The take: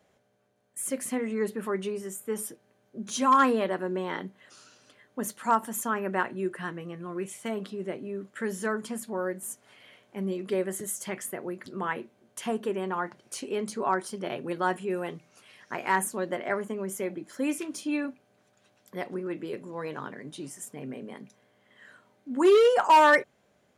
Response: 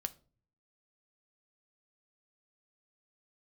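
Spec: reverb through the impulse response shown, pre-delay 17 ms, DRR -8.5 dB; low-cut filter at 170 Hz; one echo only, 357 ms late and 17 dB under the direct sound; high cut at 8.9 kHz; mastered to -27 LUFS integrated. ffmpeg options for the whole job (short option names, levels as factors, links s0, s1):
-filter_complex "[0:a]highpass=170,lowpass=8900,aecho=1:1:357:0.141,asplit=2[s0][s1];[1:a]atrim=start_sample=2205,adelay=17[s2];[s1][s2]afir=irnorm=-1:irlink=0,volume=2.99[s3];[s0][s3]amix=inputs=2:normalize=0,volume=0.422"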